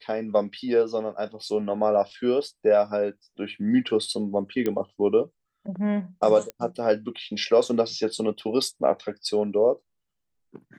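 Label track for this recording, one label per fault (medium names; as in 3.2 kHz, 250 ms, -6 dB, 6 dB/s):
4.660000	4.660000	pop -14 dBFS
6.500000	6.500000	pop -19 dBFS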